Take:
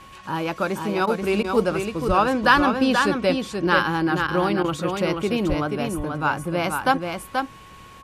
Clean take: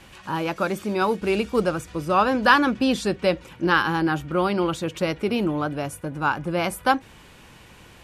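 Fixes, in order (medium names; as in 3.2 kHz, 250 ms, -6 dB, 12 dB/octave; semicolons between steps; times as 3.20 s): band-stop 1.1 kHz, Q 30; de-plosive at 2.07/5.48 s; interpolate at 1.06/1.43/4.27/4.63 s, 11 ms; inverse comb 482 ms -5 dB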